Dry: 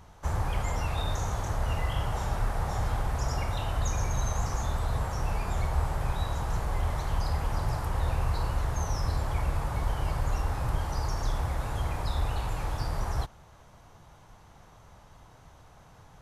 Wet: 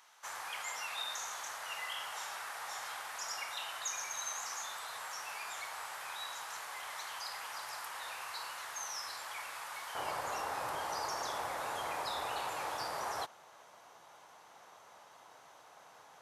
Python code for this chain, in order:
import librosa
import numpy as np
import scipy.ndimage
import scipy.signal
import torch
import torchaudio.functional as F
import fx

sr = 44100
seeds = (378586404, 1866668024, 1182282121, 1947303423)

y = fx.highpass(x, sr, hz=fx.steps((0.0, 1500.0), (9.95, 530.0)), slope=12)
y = F.gain(torch.from_numpy(y), 1.0).numpy()